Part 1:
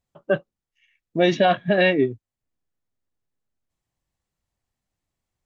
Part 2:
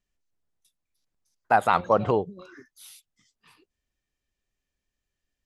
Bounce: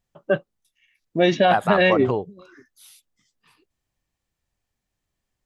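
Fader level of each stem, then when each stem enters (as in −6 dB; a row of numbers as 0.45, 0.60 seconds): +0.5, −1.5 decibels; 0.00, 0.00 seconds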